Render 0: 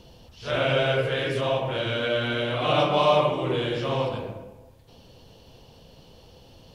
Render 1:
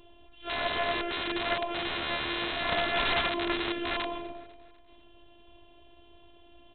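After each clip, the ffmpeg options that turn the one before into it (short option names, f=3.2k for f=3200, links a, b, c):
-af "afftfilt=real='hypot(re,im)*cos(PI*b)':imag='0':win_size=512:overlap=0.75,aresample=8000,aeval=exprs='(mod(11.9*val(0)+1,2)-1)/11.9':c=same,aresample=44100,aecho=1:1:248|496|744|992:0.0891|0.0455|0.0232|0.0118"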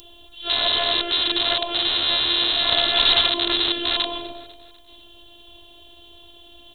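-filter_complex "[0:a]equalizer=f=180:w=4.3:g=-11,asplit=2[a][b];[b]alimiter=level_in=1.5dB:limit=-24dB:level=0:latency=1,volume=-1.5dB,volume=-2dB[c];[a][c]amix=inputs=2:normalize=0,aexciter=amount=11.9:drive=2.6:freq=3.4k"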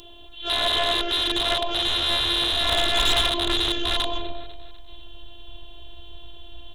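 -af "lowpass=f=3.6k:p=1,asubboost=boost=4.5:cutoff=100,asoftclip=type=tanh:threshold=-17dB,volume=2.5dB"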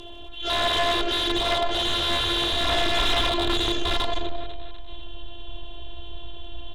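-af "aeval=exprs='0.188*(cos(1*acos(clip(val(0)/0.188,-1,1)))-cos(1*PI/2))+0.0376*(cos(5*acos(clip(val(0)/0.188,-1,1)))-cos(5*PI/2))':c=same,aeval=exprs='val(0)*gte(abs(val(0)),0.00335)':c=same,aemphasis=mode=reproduction:type=50fm"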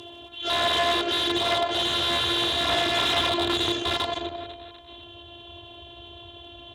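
-af "highpass=f=81:w=0.5412,highpass=f=81:w=1.3066"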